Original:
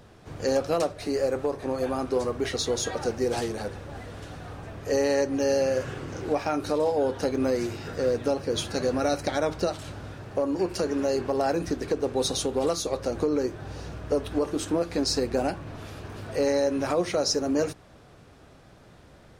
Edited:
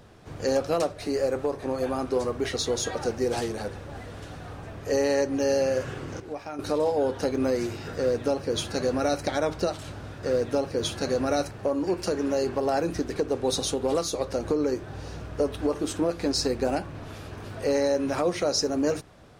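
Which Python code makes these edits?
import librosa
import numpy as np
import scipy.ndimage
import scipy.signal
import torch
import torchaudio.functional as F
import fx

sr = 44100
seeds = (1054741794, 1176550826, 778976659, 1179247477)

y = fx.edit(x, sr, fx.clip_gain(start_s=6.2, length_s=0.39, db=-9.5),
    fx.duplicate(start_s=7.96, length_s=1.28, to_s=10.23), tone=tone)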